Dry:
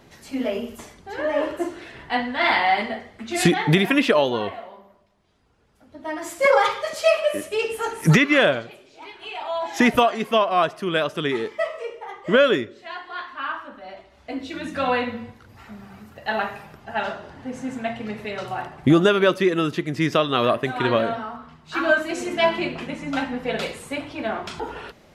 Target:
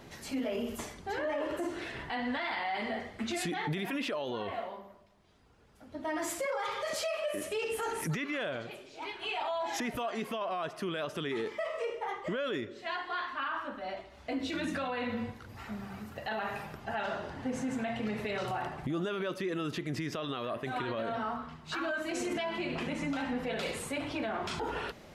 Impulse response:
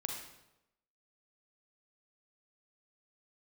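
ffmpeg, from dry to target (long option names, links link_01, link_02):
-af "acompressor=threshold=-27dB:ratio=4,alimiter=level_in=2.5dB:limit=-24dB:level=0:latency=1:release=25,volume=-2.5dB"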